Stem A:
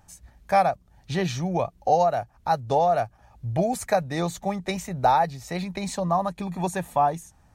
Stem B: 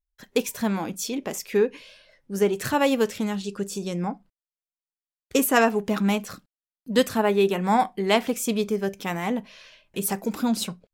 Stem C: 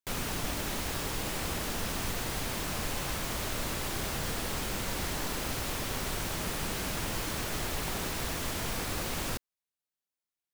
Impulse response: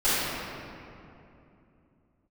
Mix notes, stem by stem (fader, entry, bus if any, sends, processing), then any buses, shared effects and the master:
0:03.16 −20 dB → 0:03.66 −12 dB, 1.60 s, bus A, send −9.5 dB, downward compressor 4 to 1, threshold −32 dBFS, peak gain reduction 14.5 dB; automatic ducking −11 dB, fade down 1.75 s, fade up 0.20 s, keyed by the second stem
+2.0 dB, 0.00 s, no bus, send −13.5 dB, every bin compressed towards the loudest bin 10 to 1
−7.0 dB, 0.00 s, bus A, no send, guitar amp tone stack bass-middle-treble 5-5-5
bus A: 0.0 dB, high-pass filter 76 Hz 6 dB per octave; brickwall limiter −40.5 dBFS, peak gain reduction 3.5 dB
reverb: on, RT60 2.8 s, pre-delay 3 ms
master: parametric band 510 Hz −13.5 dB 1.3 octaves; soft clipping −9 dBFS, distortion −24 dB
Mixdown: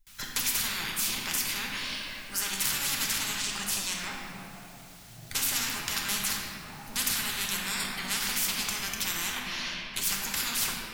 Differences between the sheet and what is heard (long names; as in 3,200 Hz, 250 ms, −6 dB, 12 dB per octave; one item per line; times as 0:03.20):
stem A: send −9.5 dB → −16.5 dB
stem B +2.0 dB → −4.0 dB